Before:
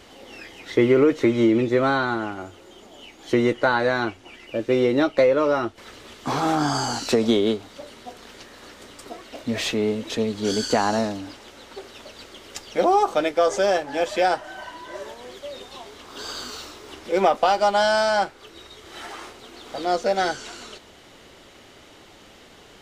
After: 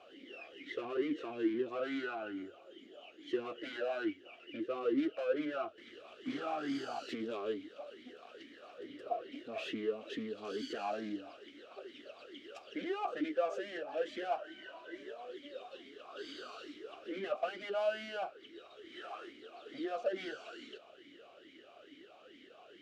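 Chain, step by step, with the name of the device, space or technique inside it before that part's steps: talk box (valve stage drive 27 dB, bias 0.35; talking filter a-i 2.3 Hz); 8.78–9.32 s: graphic EQ 125/500/8000 Hz +10/+8/-6 dB; trim +3 dB

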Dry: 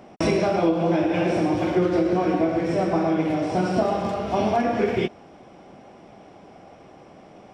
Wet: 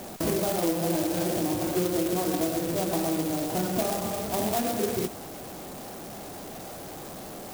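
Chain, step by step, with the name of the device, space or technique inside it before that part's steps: early CD player with a faulty converter (jump at every zero crossing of -28.5 dBFS; sampling jitter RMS 0.12 ms); trim -7 dB

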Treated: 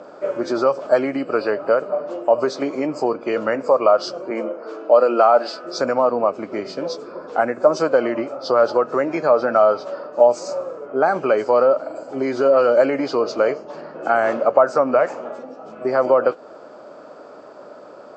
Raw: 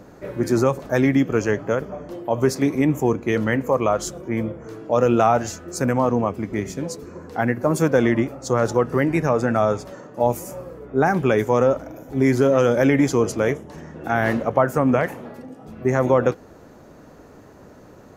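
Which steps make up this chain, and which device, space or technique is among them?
4.30–5.64 s: high-pass 220 Hz 24 dB/octave; hearing aid with frequency lowering (knee-point frequency compression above 2.4 kHz 1.5:1; compression 2:1, threshold -22 dBFS, peak gain reduction 6 dB; cabinet simulation 380–6800 Hz, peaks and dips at 600 Hz +9 dB, 1.3 kHz +7 dB, 1.9 kHz -9 dB, 3.8 kHz -6 dB); trim +5 dB

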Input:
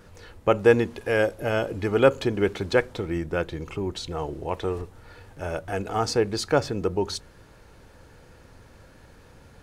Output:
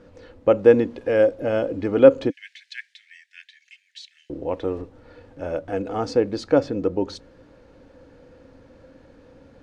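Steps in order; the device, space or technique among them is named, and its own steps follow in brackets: 2.30–4.30 s: steep high-pass 1.7 kHz 96 dB/octave; inside a cardboard box (low-pass 5.3 kHz 12 dB/octave; small resonant body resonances 280/510 Hz, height 14 dB, ringing for 40 ms); trim -4.5 dB

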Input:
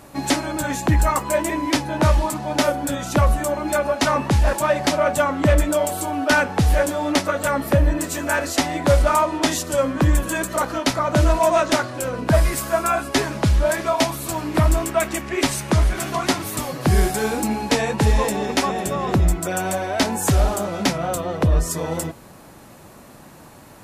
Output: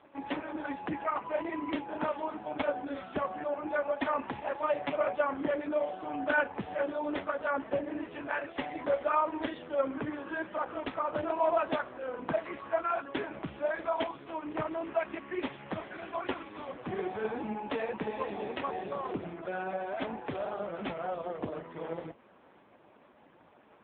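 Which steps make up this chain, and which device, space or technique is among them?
telephone (band-pass 260–3500 Hz; trim -9 dB; AMR-NB 4.75 kbps 8 kHz)

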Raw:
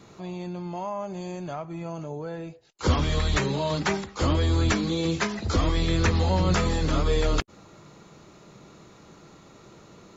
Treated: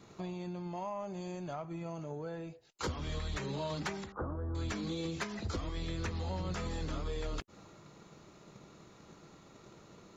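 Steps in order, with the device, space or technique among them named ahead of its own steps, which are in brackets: drum-bus smash (transient shaper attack +7 dB, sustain +2 dB; compression 12:1, threshold -25 dBFS, peak gain reduction 14 dB; saturation -20 dBFS, distortion -22 dB); 4.12–4.55 s: elliptic low-pass 1.5 kHz, stop band 40 dB; trim -7 dB

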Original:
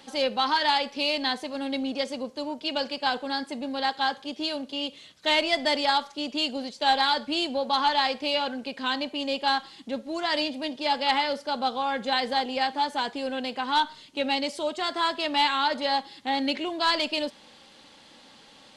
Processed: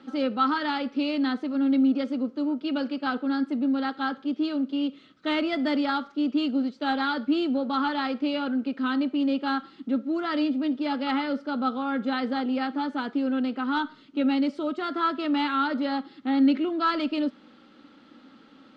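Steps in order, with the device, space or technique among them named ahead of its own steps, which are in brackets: inside a cardboard box (low-pass 3.8 kHz 12 dB/octave; small resonant body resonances 270/1300 Hz, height 18 dB, ringing for 25 ms); trim -8 dB

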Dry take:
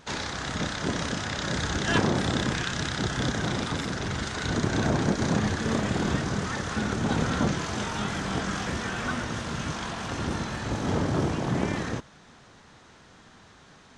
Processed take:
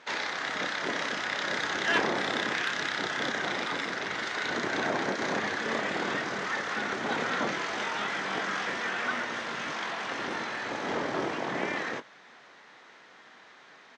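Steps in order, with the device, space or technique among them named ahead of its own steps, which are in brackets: intercom (band-pass 400–4700 Hz; peaking EQ 2 kHz +6 dB 0.52 oct; saturation -14.5 dBFS, distortion -28 dB; doubling 21 ms -12 dB)

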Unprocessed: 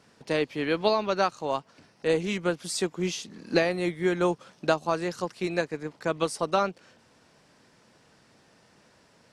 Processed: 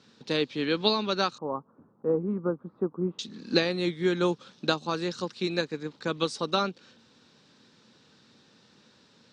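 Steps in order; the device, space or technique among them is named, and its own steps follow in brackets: car door speaker (cabinet simulation 93–7100 Hz, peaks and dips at 230 Hz +5 dB, 670 Hz -10 dB, 980 Hz -3 dB, 2 kHz -5 dB, 3.8 kHz +10 dB); 1.38–3.19 s: Chebyshev low-pass 1.2 kHz, order 4

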